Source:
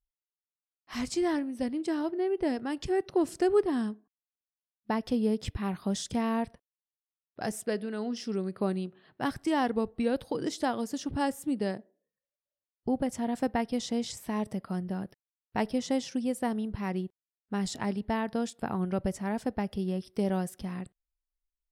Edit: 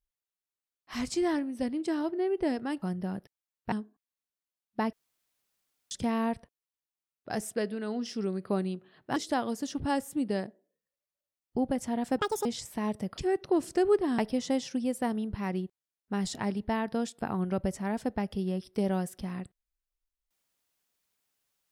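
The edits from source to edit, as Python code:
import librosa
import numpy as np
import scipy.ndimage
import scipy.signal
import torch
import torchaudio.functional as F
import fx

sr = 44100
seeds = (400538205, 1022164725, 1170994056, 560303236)

y = fx.edit(x, sr, fx.swap(start_s=2.82, length_s=1.01, other_s=14.69, other_length_s=0.9),
    fx.room_tone_fill(start_s=5.04, length_s=0.98),
    fx.cut(start_s=9.27, length_s=1.2),
    fx.speed_span(start_s=13.5, length_s=0.47, speed=1.78), tone=tone)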